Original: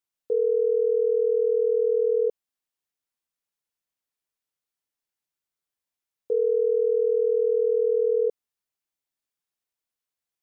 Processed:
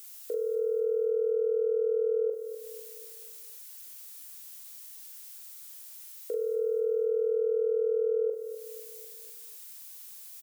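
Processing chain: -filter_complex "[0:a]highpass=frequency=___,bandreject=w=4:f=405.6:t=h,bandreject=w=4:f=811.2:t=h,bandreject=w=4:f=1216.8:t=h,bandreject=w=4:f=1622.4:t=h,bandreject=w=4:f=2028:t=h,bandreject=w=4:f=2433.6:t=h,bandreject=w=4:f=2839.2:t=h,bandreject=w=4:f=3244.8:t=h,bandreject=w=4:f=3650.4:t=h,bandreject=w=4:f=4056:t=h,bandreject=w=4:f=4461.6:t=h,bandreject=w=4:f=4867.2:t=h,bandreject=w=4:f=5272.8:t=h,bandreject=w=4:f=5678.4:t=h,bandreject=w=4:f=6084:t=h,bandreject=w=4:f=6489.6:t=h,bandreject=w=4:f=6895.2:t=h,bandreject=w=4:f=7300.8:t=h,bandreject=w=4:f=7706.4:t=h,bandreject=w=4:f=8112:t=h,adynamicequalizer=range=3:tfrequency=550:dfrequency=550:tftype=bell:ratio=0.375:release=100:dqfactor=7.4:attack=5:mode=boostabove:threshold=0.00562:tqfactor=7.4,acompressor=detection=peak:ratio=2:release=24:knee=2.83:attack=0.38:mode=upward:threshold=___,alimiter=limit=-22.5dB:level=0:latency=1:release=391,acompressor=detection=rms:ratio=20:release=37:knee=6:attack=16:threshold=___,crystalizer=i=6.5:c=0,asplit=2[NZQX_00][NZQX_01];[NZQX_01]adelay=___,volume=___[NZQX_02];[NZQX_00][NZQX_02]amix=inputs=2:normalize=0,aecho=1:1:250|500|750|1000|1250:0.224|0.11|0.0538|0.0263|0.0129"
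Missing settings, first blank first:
280, -41dB, -31dB, 41, -5dB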